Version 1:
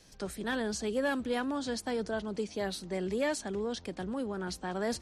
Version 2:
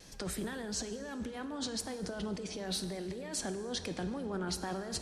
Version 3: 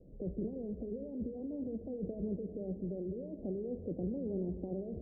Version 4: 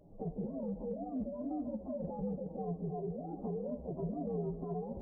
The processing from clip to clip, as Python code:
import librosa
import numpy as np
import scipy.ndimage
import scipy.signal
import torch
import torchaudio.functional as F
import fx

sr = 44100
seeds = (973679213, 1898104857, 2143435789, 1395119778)

y1 = fx.over_compress(x, sr, threshold_db=-39.0, ratio=-1.0)
y1 = fx.vibrato(y1, sr, rate_hz=2.2, depth_cents=45.0)
y1 = fx.rev_plate(y1, sr, seeds[0], rt60_s=2.1, hf_ratio=0.7, predelay_ms=0, drr_db=9.0)
y2 = scipy.signal.sosfilt(scipy.signal.butter(8, 590.0, 'lowpass', fs=sr, output='sos'), y1)
y2 = F.gain(torch.from_numpy(y2), 1.0).numpy()
y3 = fx.partial_stretch(y2, sr, pct=128)
y3 = fx.recorder_agc(y3, sr, target_db=-32.5, rise_db_per_s=14.0, max_gain_db=30)
y3 = fx.low_shelf(y3, sr, hz=77.0, db=-7.0)
y3 = F.gain(torch.from_numpy(y3), 2.5).numpy()